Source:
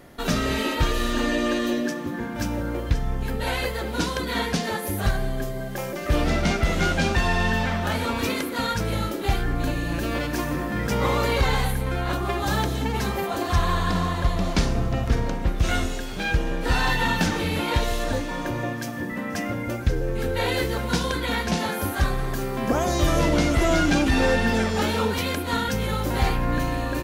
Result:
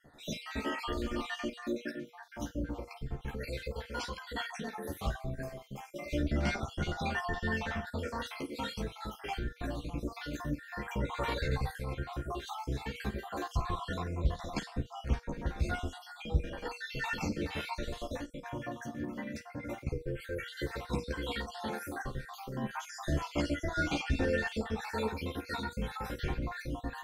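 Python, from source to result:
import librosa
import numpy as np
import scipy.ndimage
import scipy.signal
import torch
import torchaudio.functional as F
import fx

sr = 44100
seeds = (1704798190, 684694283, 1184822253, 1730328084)

p1 = fx.spec_dropout(x, sr, seeds[0], share_pct=56)
p2 = fx.high_shelf(p1, sr, hz=7300.0, db=-8.5)
p3 = fx.comb_fb(p2, sr, f0_hz=480.0, decay_s=0.34, harmonics='odd', damping=0.0, mix_pct=60)
p4 = p3 + fx.room_early_taps(p3, sr, ms=(14, 52), db=(-3.5, -15.5), dry=0)
y = fx.harmonic_tremolo(p4, sr, hz=1.9, depth_pct=50, crossover_hz=500.0)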